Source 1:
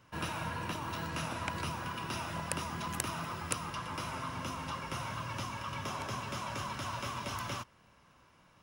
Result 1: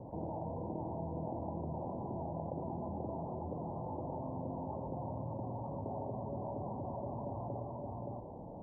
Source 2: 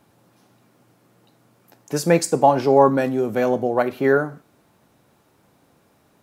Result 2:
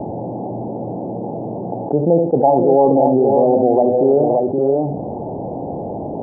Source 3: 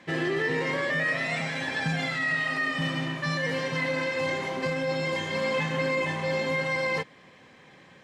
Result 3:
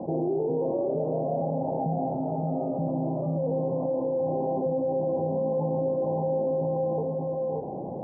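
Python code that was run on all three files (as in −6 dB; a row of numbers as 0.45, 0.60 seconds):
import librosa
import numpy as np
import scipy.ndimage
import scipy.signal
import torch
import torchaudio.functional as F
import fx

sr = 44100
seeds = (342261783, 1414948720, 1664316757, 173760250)

y = scipy.signal.sosfilt(scipy.signal.butter(12, 840.0, 'lowpass', fs=sr, output='sos'), x)
y = fx.low_shelf(y, sr, hz=240.0, db=-8.5)
y = fx.echo_multitap(y, sr, ms=(77, 522, 572), db=(-13.5, -13.5, -7.5))
y = fx.env_flatten(y, sr, amount_pct=70)
y = y * librosa.db_to_amplitude(2.0)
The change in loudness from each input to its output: −3.5, +2.0, −0.5 LU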